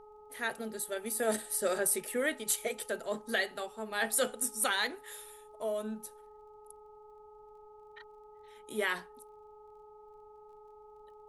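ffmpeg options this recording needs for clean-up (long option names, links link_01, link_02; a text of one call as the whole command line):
ffmpeg -i in.wav -af "adeclick=threshold=4,bandreject=frequency=422.1:width_type=h:width=4,bandreject=frequency=844.2:width_type=h:width=4,bandreject=frequency=1266.3:width_type=h:width=4,bandreject=frequency=870:width=30,agate=range=-21dB:threshold=-47dB" out.wav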